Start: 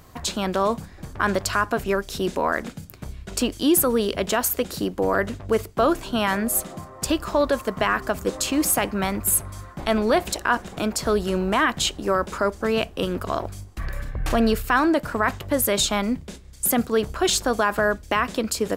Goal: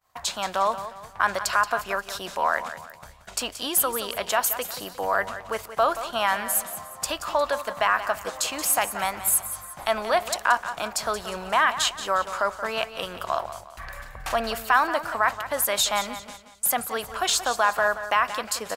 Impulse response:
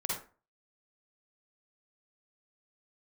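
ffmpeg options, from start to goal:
-af "lowshelf=frequency=510:width_type=q:width=1.5:gain=-13,agate=range=-33dB:threshold=-42dB:ratio=3:detection=peak,aecho=1:1:178|356|534|712:0.251|0.098|0.0382|0.0149,volume=-1dB"

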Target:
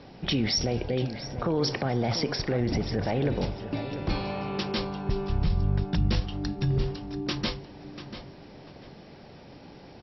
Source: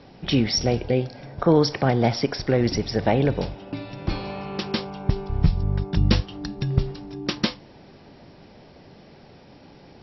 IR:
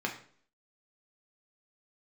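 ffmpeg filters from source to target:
-filter_complex "[0:a]asettb=1/sr,asplit=3[link_01][link_02][link_03];[link_01]atrim=end=2.604[link_04];[link_02]atrim=start=2.6:end=3.04,asetpts=PTS-STARTPTS,afade=type=in:duration=0.004:curve=qsin,afade=type=out:start_time=0.436:duration=0.004:curve=qsin,bass=frequency=250:gain=3,treble=frequency=4000:gain=-13[link_05];[link_03]atrim=start=3.036[link_06];[link_04][link_05]acrossfade=duration=0.004:curve1=hsin:curve2=qsin[link_07];[link_07][link_06]acrossfade=duration=0.004:curve1=qsin:curve2=hsin,alimiter=limit=-17.5dB:level=0:latency=1:release=22,asplit=2[link_08][link_09];[link_09]adelay=691,lowpass=frequency=4200:poles=1,volume=-11dB,asplit=2[link_10][link_11];[link_11]adelay=691,lowpass=frequency=4200:poles=1,volume=0.28,asplit=2[link_12][link_13];[link_13]adelay=691,lowpass=frequency=4200:poles=1,volume=0.28[link_14];[link_08][link_10][link_12][link_14]amix=inputs=4:normalize=0"

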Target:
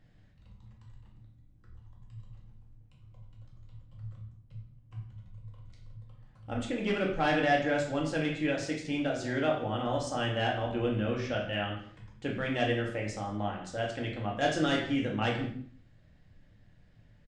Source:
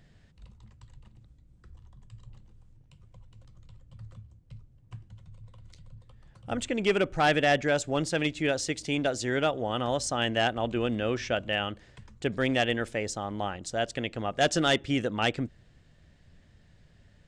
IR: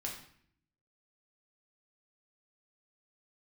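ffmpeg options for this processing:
-filter_complex "[0:a]highshelf=frequency=4800:gain=-9.5,asplit=2[link_01][link_02];[link_02]adelay=163.3,volume=-19dB,highshelf=frequency=4000:gain=-3.67[link_03];[link_01][link_03]amix=inputs=2:normalize=0[link_04];[1:a]atrim=start_sample=2205,afade=type=out:start_time=0.31:duration=0.01,atrim=end_sample=14112[link_05];[link_04][link_05]afir=irnorm=-1:irlink=0,volume=-3dB"

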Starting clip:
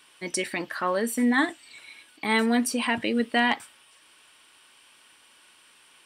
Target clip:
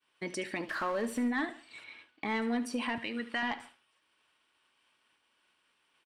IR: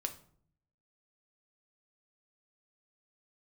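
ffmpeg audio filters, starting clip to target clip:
-filter_complex "[0:a]asettb=1/sr,asplit=3[link_01][link_02][link_03];[link_01]atrim=end=0.694[link_04];[link_02]atrim=start=0.69:end=1.28,asetpts=PTS-STARTPTS,afade=type=in:duration=0.004:curve=qsin,afade=type=out:start_time=0.586:duration=0.004:curve=qsin,aeval=exprs='val(0)+0.5*0.02*sgn(val(0))':channel_layout=same[link_05];[link_03]atrim=start=1.276[link_06];[link_04][link_05]acrossfade=duration=0.004:curve1=hsin:curve2=qsin[link_07];[link_07][link_06]acrossfade=duration=0.004:curve1=qsin:curve2=hsin,asettb=1/sr,asplit=3[link_08][link_09][link_10];[link_08]atrim=end=2.984[link_11];[link_09]atrim=start=2.98:end=3.43,asetpts=PTS-STARTPTS,afade=type=in:duration=0.004:curve=qsin,afade=type=out:start_time=0.446:duration=0.004:curve=qsin,lowshelf=frequency=770:width_type=q:width=1.5:gain=-8[link_12];[link_10]atrim=start=3.426[link_13];[link_11][link_12]acrossfade=duration=0.004:curve1=hsin:curve2=qsin[link_14];[link_14][link_13]acrossfade=duration=0.004:curve1=qsin:curve2=hsin,asoftclip=type=tanh:threshold=-15dB,acompressor=threshold=-36dB:ratio=2,asplit=2[link_15][link_16];[link_16]aecho=0:1:73|146|219|292:0.178|0.0747|0.0314|0.0132[link_17];[link_15][link_17]amix=inputs=2:normalize=0,agate=range=-33dB:threshold=-46dB:ratio=3:detection=peak,asettb=1/sr,asplit=3[link_18][link_19][link_20];[link_18]atrim=end=1.844[link_21];[link_19]atrim=start=1.84:end=2.42,asetpts=PTS-STARTPTS,afade=type=in:duration=0.004:curve=qsin,afade=type=out:start_time=0.576:duration=0.004:curve=qsin,adynamicsmooth=sensitivity=4:basefreq=5200[link_22];[link_20]atrim=start=2.416[link_23];[link_21][link_22]acrossfade=duration=0.004:curve1=hsin:curve2=qsin[link_24];[link_24][link_23]acrossfade=duration=0.004:curve1=qsin:curve2=hsin,aemphasis=mode=reproduction:type=50fm"

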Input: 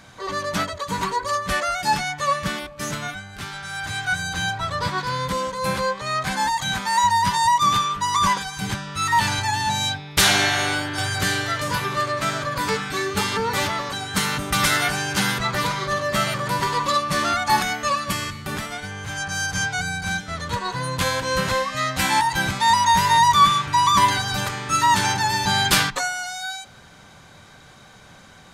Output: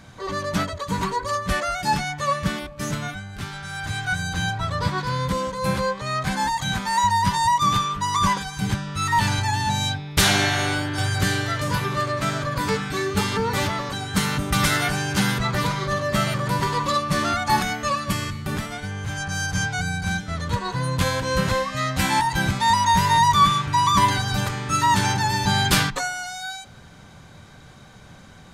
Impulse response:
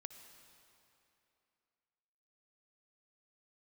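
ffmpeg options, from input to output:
-af "lowshelf=frequency=330:gain=8.5,volume=-2.5dB"

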